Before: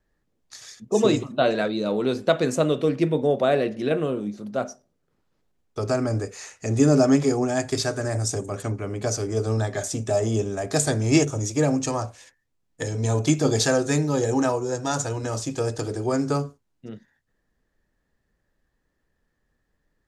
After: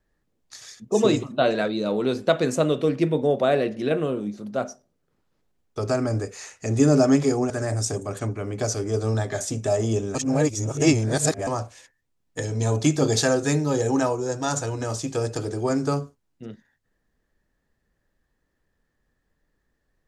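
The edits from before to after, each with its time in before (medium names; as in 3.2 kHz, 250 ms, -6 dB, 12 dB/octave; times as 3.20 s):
7.50–7.93 s: delete
10.58–11.90 s: reverse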